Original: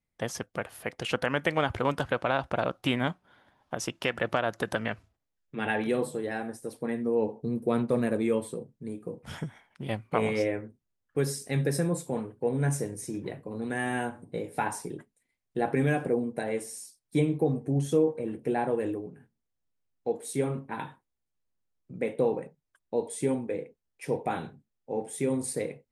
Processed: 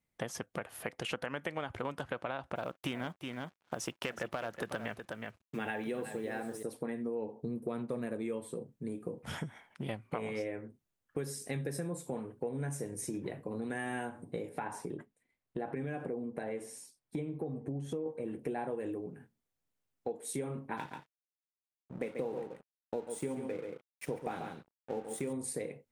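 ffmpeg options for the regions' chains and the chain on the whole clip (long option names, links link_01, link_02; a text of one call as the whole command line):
ffmpeg -i in.wav -filter_complex "[0:a]asettb=1/sr,asplit=3[link_01][link_02][link_03];[link_01]atrim=end=2.554[link_04];[link_02]atrim=start=2.55:end=6.63,asetpts=PTS-STARTPTS,afade=type=in:duration=0.004:curve=qsin,afade=type=out:start_time=4.076:duration=0.004:curve=qsin,volume=16.5dB,asoftclip=hard,volume=-16.5dB,acrusher=bits=8:mix=0:aa=0.5,aecho=1:1:368:0.251,atrim=end_sample=179928[link_05];[link_03]atrim=start=6.626[link_06];[link_04][link_05]acrossfade=duration=0.004:curve1=hsin:curve2=qsin[link_07];[link_07][link_06]acrossfade=duration=0.004:curve1=qsin:curve2=hsin,asettb=1/sr,asplit=3[link_08][link_09][link_10];[link_08]atrim=end=14.494[link_11];[link_09]atrim=start=14.49:end=18.06,asetpts=PTS-STARTPTS,afade=type=in:duration=0.004:curve=qsin,afade=type=out:start_time=3.566:duration=0.004:curve=qsin,highshelf=frequency=3900:gain=-11,acompressor=threshold=-36dB:ratio=1.5:attack=3.2:release=140:knee=1:detection=peak[link_12];[link_10]atrim=start=18.056[link_13];[link_11][link_12]acrossfade=duration=0.004:curve1=hsin:curve2=qsin[link_14];[link_14][link_13]acrossfade=duration=0.004:curve1=qsin:curve2=hsin,asettb=1/sr,asplit=3[link_15][link_16][link_17];[link_15]atrim=end=20.774[link_18];[link_16]atrim=start=20.77:end=25.33,asetpts=PTS-STARTPTS,afade=type=in:duration=0.004:curve=qsin,afade=type=out:start_time=4.556:duration=0.004:curve=qsin,aeval=exprs='sgn(val(0))*max(abs(val(0))-0.00447,0)':channel_layout=same,aecho=1:1:138:0.376,atrim=end_sample=201096[link_19];[link_17]atrim=start=25.326[link_20];[link_18][link_19]acrossfade=duration=0.004:curve1=hsin:curve2=qsin[link_21];[link_21][link_20]acrossfade=duration=0.004:curve1=qsin:curve2=hsin,lowshelf=frequency=63:gain=-9.5,acompressor=threshold=-37dB:ratio=5,equalizer=frequency=4700:width_type=o:width=0.77:gain=-2.5,volume=2dB" out.wav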